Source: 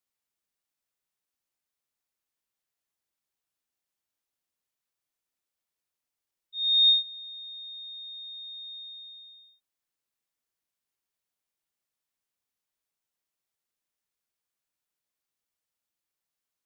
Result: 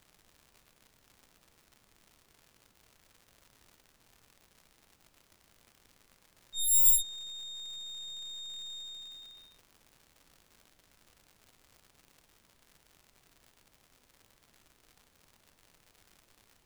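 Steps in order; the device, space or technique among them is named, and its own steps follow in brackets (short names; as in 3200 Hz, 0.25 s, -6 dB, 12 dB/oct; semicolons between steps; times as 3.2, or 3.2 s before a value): record under a worn stylus (tracing distortion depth 0.34 ms; crackle 150/s -44 dBFS; pink noise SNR 30 dB); gain -1.5 dB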